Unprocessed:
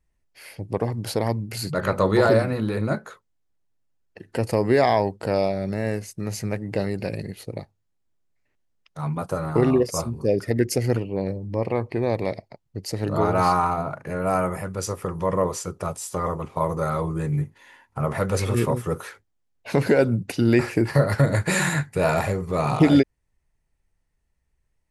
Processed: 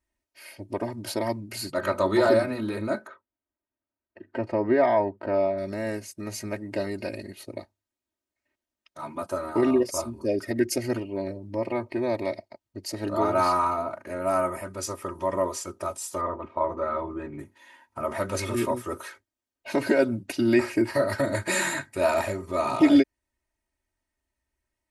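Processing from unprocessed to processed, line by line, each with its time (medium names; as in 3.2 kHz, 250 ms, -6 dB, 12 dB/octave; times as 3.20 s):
3.07–5.58 s: low-pass 1.9 kHz
16.21–17.39 s: low-pass 2.3 kHz
whole clip: high-pass 170 Hz 6 dB/octave; comb 3.2 ms, depth 94%; trim -4.5 dB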